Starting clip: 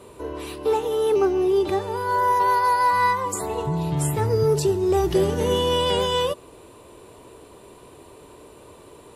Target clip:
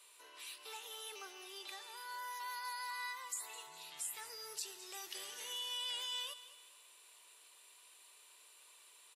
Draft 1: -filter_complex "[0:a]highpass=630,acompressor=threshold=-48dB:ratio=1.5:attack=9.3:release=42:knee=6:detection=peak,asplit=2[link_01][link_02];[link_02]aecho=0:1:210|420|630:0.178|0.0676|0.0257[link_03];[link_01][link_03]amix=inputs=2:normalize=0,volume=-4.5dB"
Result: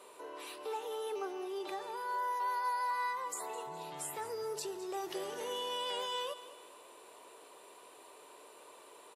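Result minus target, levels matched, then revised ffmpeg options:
500 Hz band +13.5 dB
-filter_complex "[0:a]highpass=2500,acompressor=threshold=-48dB:ratio=1.5:attack=9.3:release=42:knee=6:detection=peak,asplit=2[link_01][link_02];[link_02]aecho=0:1:210|420|630:0.178|0.0676|0.0257[link_03];[link_01][link_03]amix=inputs=2:normalize=0,volume=-4.5dB"

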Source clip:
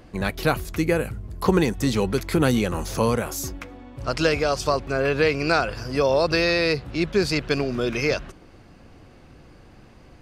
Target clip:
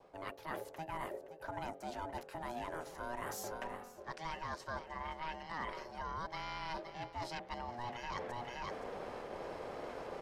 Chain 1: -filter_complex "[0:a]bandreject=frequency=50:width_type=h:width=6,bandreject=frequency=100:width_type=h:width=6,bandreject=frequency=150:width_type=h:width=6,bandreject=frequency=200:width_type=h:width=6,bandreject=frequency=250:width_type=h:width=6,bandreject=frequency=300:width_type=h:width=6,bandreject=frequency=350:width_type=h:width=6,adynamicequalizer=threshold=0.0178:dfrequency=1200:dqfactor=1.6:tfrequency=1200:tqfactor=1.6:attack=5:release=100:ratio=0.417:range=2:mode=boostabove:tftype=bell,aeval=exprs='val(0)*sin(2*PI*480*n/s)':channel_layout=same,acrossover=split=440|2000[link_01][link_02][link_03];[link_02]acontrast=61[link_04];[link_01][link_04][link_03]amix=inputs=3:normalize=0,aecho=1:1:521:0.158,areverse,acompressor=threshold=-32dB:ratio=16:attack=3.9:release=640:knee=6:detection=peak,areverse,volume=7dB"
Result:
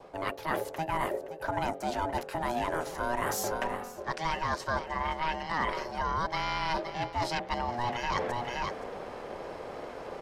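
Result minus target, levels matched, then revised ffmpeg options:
downward compressor: peak gain reduction −11 dB
-filter_complex "[0:a]bandreject=frequency=50:width_type=h:width=6,bandreject=frequency=100:width_type=h:width=6,bandreject=frequency=150:width_type=h:width=6,bandreject=frequency=200:width_type=h:width=6,bandreject=frequency=250:width_type=h:width=6,bandreject=frequency=300:width_type=h:width=6,bandreject=frequency=350:width_type=h:width=6,adynamicequalizer=threshold=0.0178:dfrequency=1200:dqfactor=1.6:tfrequency=1200:tqfactor=1.6:attack=5:release=100:ratio=0.417:range=2:mode=boostabove:tftype=bell,aeval=exprs='val(0)*sin(2*PI*480*n/s)':channel_layout=same,acrossover=split=440|2000[link_01][link_02][link_03];[link_02]acontrast=61[link_04];[link_01][link_04][link_03]amix=inputs=3:normalize=0,aecho=1:1:521:0.158,areverse,acompressor=threshold=-44dB:ratio=16:attack=3.9:release=640:knee=6:detection=peak,areverse,volume=7dB"

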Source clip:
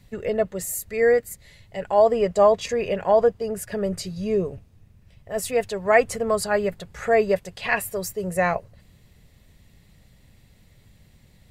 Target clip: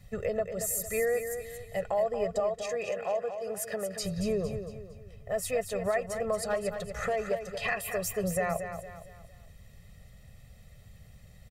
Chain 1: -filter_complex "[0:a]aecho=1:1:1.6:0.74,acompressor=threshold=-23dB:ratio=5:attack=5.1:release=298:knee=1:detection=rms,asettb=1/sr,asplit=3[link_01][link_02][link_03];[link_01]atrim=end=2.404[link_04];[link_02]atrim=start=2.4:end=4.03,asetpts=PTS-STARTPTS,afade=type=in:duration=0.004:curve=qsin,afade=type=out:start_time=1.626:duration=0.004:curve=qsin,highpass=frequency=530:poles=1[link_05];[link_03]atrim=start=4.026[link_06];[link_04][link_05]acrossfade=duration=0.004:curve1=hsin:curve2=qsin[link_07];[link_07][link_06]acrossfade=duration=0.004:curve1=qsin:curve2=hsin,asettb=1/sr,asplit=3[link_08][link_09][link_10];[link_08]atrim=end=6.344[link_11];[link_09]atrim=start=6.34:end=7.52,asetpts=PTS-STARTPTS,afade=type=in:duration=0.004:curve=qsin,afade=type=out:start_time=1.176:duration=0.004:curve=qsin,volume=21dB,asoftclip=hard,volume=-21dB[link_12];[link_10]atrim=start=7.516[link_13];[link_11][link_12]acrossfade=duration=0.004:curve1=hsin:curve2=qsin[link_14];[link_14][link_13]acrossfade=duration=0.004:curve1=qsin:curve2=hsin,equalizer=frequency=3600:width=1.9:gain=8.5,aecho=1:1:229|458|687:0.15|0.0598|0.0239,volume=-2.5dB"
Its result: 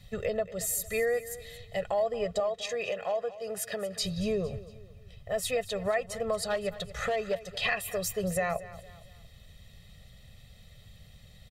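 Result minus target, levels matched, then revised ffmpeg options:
4,000 Hz band +6.5 dB; echo-to-direct −8 dB
-filter_complex "[0:a]aecho=1:1:1.6:0.74,acompressor=threshold=-23dB:ratio=5:attack=5.1:release=298:knee=1:detection=rms,asettb=1/sr,asplit=3[link_01][link_02][link_03];[link_01]atrim=end=2.404[link_04];[link_02]atrim=start=2.4:end=4.03,asetpts=PTS-STARTPTS,afade=type=in:duration=0.004:curve=qsin,afade=type=out:start_time=1.626:duration=0.004:curve=qsin,highpass=frequency=530:poles=1[link_05];[link_03]atrim=start=4.026[link_06];[link_04][link_05]acrossfade=duration=0.004:curve1=hsin:curve2=qsin[link_07];[link_07][link_06]acrossfade=duration=0.004:curve1=qsin:curve2=hsin,asettb=1/sr,asplit=3[link_08][link_09][link_10];[link_08]atrim=end=6.344[link_11];[link_09]atrim=start=6.34:end=7.52,asetpts=PTS-STARTPTS,afade=type=in:duration=0.004:curve=qsin,afade=type=out:start_time=1.176:duration=0.004:curve=qsin,volume=21dB,asoftclip=hard,volume=-21dB[link_12];[link_10]atrim=start=7.516[link_13];[link_11][link_12]acrossfade=duration=0.004:curve1=hsin:curve2=qsin[link_14];[link_14][link_13]acrossfade=duration=0.004:curve1=qsin:curve2=hsin,equalizer=frequency=3600:width=1.9:gain=-3,aecho=1:1:229|458|687|916:0.376|0.15|0.0601|0.0241,volume=-2.5dB"

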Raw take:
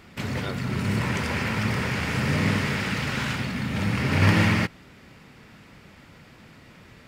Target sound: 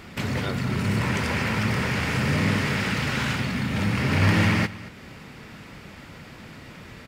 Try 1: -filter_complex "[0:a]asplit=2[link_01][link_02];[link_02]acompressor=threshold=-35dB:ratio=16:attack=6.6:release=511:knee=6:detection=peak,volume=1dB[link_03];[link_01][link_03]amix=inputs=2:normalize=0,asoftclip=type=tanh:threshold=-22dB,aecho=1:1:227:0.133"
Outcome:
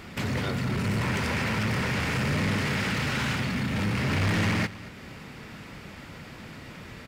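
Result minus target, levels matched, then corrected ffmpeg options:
soft clipping: distortion +12 dB
-filter_complex "[0:a]asplit=2[link_01][link_02];[link_02]acompressor=threshold=-35dB:ratio=16:attack=6.6:release=511:knee=6:detection=peak,volume=1dB[link_03];[link_01][link_03]amix=inputs=2:normalize=0,asoftclip=type=tanh:threshold=-11dB,aecho=1:1:227:0.133"

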